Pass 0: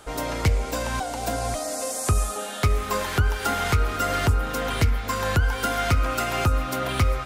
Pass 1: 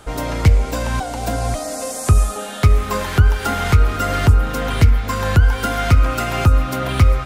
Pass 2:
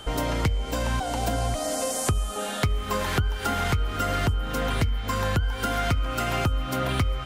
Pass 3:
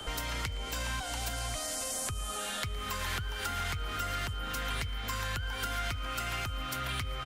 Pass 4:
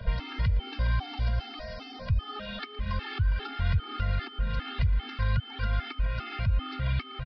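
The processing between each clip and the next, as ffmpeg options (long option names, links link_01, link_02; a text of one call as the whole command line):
ffmpeg -i in.wav -af "bass=frequency=250:gain=6,treble=frequency=4000:gain=-2,volume=3.5dB" out.wav
ffmpeg -i in.wav -af "acompressor=threshold=-21dB:ratio=6,aeval=exprs='val(0)+0.00794*sin(2*PI*3100*n/s)':channel_layout=same,volume=-1dB" out.wav
ffmpeg -i in.wav -filter_complex "[0:a]acrossover=split=120|1100[link_01][link_02][link_03];[link_01]acompressor=threshold=-38dB:ratio=4[link_04];[link_02]acompressor=threshold=-41dB:ratio=4[link_05];[link_03]acompressor=threshold=-34dB:ratio=4[link_06];[link_04][link_05][link_06]amix=inputs=3:normalize=0,aecho=1:1:115|230|345|460:0.0891|0.0455|0.0232|0.0118,acrossover=split=100|1100|6300[link_07][link_08][link_09][link_10];[link_08]alimiter=level_in=13.5dB:limit=-24dB:level=0:latency=1:release=37,volume=-13.5dB[link_11];[link_07][link_11][link_09][link_10]amix=inputs=4:normalize=0" out.wav
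ffmpeg -i in.wav -af "bass=frequency=250:gain=11,treble=frequency=4000:gain=-5,aresample=11025,aresample=44100,afftfilt=real='re*gt(sin(2*PI*2.5*pts/sr)*(1-2*mod(floor(b*sr/1024/230),2)),0)':imag='im*gt(sin(2*PI*2.5*pts/sr)*(1-2*mod(floor(b*sr/1024/230),2)),0)':win_size=1024:overlap=0.75,volume=2dB" out.wav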